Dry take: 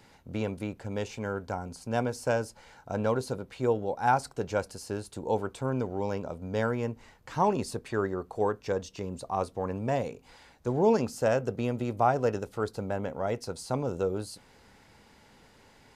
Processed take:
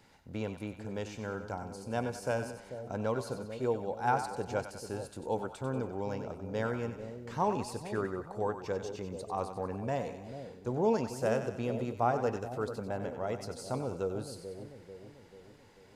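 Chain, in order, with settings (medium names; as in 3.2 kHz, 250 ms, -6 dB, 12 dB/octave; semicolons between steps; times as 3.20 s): two-band feedback delay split 640 Hz, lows 440 ms, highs 94 ms, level -9 dB; trim -5 dB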